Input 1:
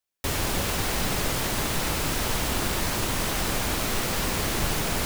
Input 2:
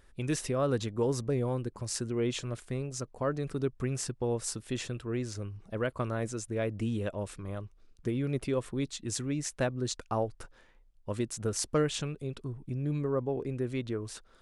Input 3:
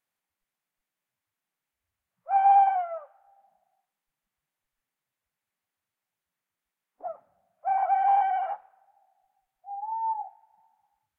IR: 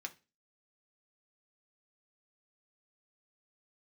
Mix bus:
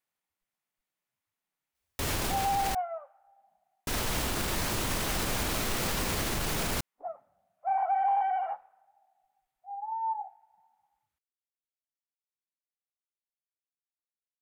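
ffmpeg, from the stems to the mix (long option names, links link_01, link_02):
-filter_complex "[0:a]adelay=1750,volume=-0.5dB,asplit=3[link_01][link_02][link_03];[link_01]atrim=end=2.75,asetpts=PTS-STARTPTS,afade=type=out:start_time=2.746:duration=0.004:curve=hsin[link_04];[link_02]atrim=start=2.75:end=3.87,asetpts=PTS-STARTPTS,volume=0[link_05];[link_03]atrim=start=3.87,asetpts=PTS-STARTPTS,afade=type=in:duration=0.004:curve=hsin[link_06];[link_04][link_05][link_06]concat=n=3:v=0:a=1[link_07];[2:a]bandreject=frequency=1600:width=26,volume=-2.5dB[link_08];[link_07][link_08]amix=inputs=2:normalize=0,alimiter=limit=-21dB:level=0:latency=1:release=39"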